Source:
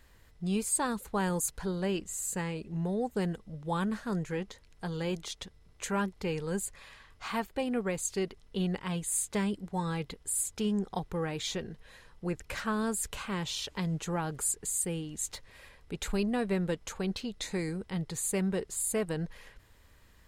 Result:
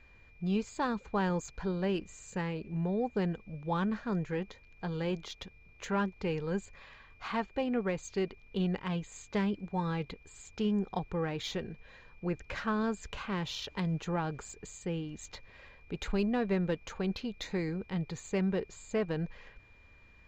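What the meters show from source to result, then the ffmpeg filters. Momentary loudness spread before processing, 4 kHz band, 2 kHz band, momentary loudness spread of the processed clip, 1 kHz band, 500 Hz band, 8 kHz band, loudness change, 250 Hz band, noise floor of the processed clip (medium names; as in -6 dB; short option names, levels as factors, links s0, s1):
9 LU, -3.0 dB, -1.0 dB, 12 LU, 0.0 dB, 0.0 dB, -16.0 dB, -1.5 dB, 0.0 dB, -59 dBFS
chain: -af "aresample=16000,aresample=44100,adynamicsmooth=sensitivity=2.5:basefreq=4200,aeval=exprs='val(0)+0.000891*sin(2*PI*2400*n/s)':c=same"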